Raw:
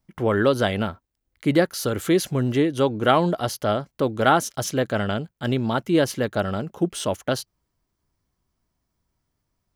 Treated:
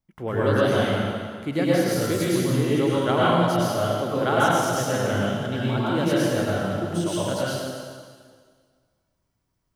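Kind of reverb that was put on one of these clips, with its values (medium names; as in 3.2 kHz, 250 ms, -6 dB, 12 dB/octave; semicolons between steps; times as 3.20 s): plate-style reverb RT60 1.8 s, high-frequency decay 0.95×, pre-delay 90 ms, DRR -8 dB; trim -8.5 dB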